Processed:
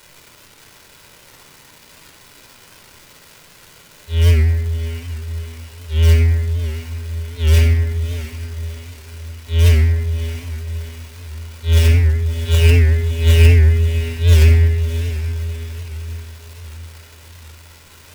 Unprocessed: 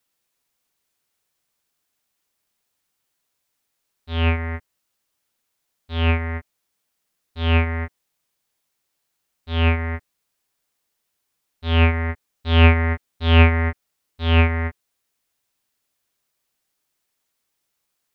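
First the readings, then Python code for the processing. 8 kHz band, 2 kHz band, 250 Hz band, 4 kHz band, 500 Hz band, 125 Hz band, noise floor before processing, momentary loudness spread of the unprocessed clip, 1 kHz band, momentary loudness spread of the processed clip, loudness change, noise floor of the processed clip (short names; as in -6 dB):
n/a, -2.5 dB, -4.0 dB, +2.0 dB, +2.0 dB, +8.5 dB, -76 dBFS, 17 LU, -10.0 dB, 21 LU, +4.0 dB, -46 dBFS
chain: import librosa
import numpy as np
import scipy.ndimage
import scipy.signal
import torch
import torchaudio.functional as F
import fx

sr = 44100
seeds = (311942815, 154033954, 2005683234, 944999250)

p1 = fx.self_delay(x, sr, depth_ms=0.051)
p2 = fx.dereverb_blind(p1, sr, rt60_s=0.6)
p3 = fx.band_shelf(p2, sr, hz=930.0, db=-11.5, octaves=1.7)
p4 = fx.dmg_crackle(p3, sr, seeds[0], per_s=570.0, level_db=-32.0)
p5 = (np.mod(10.0 ** (15.0 / 20.0) * p4 + 1.0, 2.0) - 1.0) / 10.0 ** (15.0 / 20.0)
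p6 = p4 + F.gain(torch.from_numpy(p5), -3.5).numpy()
p7 = fx.echo_diffused(p6, sr, ms=638, feedback_pct=48, wet_db=-10.5)
p8 = fx.room_shoebox(p7, sr, seeds[1], volume_m3=3600.0, walls='furnished', distance_m=4.8)
p9 = fx.record_warp(p8, sr, rpm=78.0, depth_cents=100.0)
y = F.gain(torch.from_numpy(p9), -5.5).numpy()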